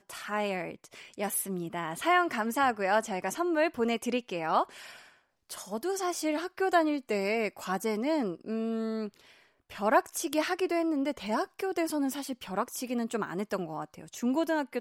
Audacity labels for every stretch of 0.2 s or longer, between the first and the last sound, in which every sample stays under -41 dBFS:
4.970000	5.500000	silence
9.200000	9.700000	silence